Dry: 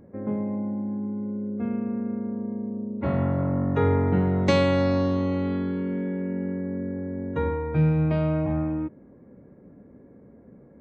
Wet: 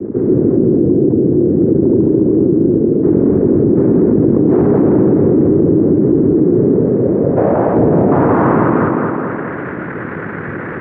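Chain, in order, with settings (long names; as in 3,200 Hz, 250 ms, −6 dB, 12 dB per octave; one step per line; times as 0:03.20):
0:04.50–0:06.76: comb filter 7.2 ms, depth 68%
cochlear-implant simulation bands 3
low-pass filter sweep 360 Hz → 1,700 Hz, 0:06.47–0:09.43
tape delay 211 ms, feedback 49%, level −5 dB, low-pass 5,200 Hz
boost into a limiter +13.5 dB
envelope flattener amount 50%
level −3 dB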